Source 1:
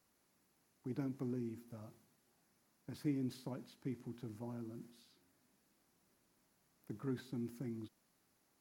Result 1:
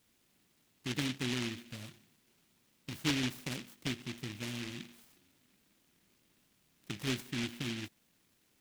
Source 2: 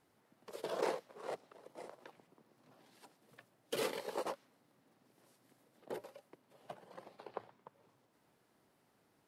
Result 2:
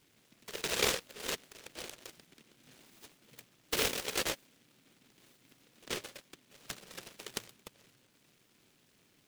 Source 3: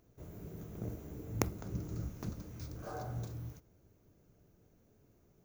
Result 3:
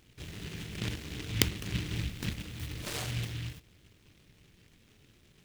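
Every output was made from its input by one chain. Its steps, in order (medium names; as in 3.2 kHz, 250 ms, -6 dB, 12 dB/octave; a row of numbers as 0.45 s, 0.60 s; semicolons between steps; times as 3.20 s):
delay time shaken by noise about 2.6 kHz, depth 0.37 ms; trim +5.5 dB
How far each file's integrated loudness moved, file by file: +7.0 LU, +7.5 LU, +7.0 LU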